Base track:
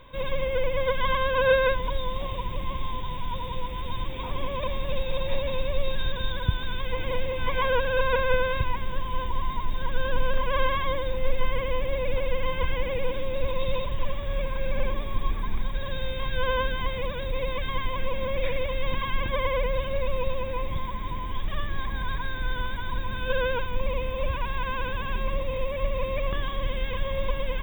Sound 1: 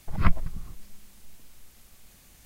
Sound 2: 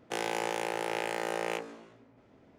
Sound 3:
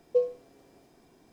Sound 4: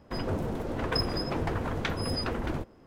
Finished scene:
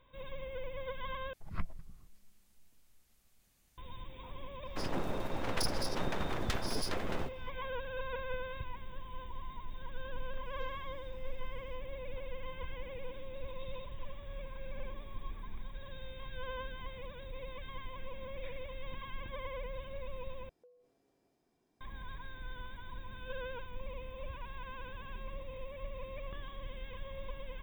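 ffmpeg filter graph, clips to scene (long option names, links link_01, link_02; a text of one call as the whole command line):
ffmpeg -i bed.wav -i cue0.wav -i cue1.wav -i cue2.wav -i cue3.wav -filter_complex "[3:a]asplit=2[link_01][link_02];[0:a]volume=-16dB[link_03];[4:a]aeval=exprs='abs(val(0))':channel_layout=same[link_04];[link_01]highpass=1400[link_05];[link_02]acompressor=threshold=-44dB:ratio=6:attack=3.2:release=140:knee=1:detection=peak[link_06];[link_03]asplit=3[link_07][link_08][link_09];[link_07]atrim=end=1.334[link_10];[1:a]atrim=end=2.45,asetpts=PTS-STARTPTS,volume=-16.5dB[link_11];[link_08]atrim=start=3.776:end=20.494[link_12];[link_06]atrim=end=1.32,asetpts=PTS-STARTPTS,volume=-17.5dB[link_13];[link_09]atrim=start=21.806[link_14];[link_04]atrim=end=2.86,asetpts=PTS-STARTPTS,volume=-2.5dB,afade=type=in:duration=0.004:curve=hsin,afade=type=out:start_time=2.856:duration=0.004:curve=hsin,adelay=205065S[link_15];[link_05]atrim=end=1.32,asetpts=PTS-STARTPTS,volume=-9.5dB,afade=type=in:duration=0.004:curve=hsin,afade=type=out:start_time=1.316:duration=0.004:curve=hsin,adelay=10450[link_16];[link_10][link_11]acrossfade=duration=0.004:curve1=hsin:curve2=hsin[link_17];[link_17][link_12]acrossfade=duration=0.004:curve1=hsin:curve2=hsin[link_18];[link_18][link_13]acrossfade=duration=0.004:curve1=hsin:curve2=hsin[link_19];[link_19][link_14]acrossfade=duration=0.004:curve1=hsin:curve2=hsin[link_20];[link_20][link_15][link_16]amix=inputs=3:normalize=0" out.wav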